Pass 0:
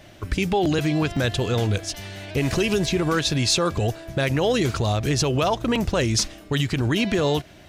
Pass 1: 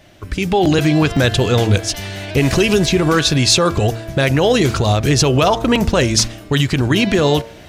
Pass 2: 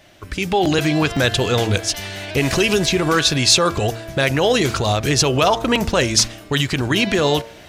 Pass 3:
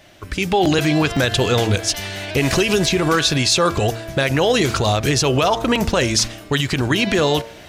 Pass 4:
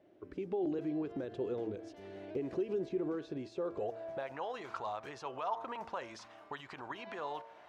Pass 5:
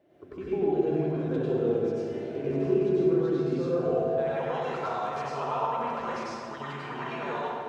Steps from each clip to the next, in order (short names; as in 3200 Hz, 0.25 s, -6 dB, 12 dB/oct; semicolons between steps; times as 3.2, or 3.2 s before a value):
de-hum 113.9 Hz, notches 14; AGC gain up to 11.5 dB
low shelf 400 Hz -6.5 dB
maximiser +7.5 dB; gain -6 dB
compressor 3:1, threshold -23 dBFS, peak gain reduction 8.5 dB; band-pass sweep 370 Hz -> 960 Hz, 3.51–4.43; gain -7 dB
reverb RT60 2.3 s, pre-delay 89 ms, DRR -9 dB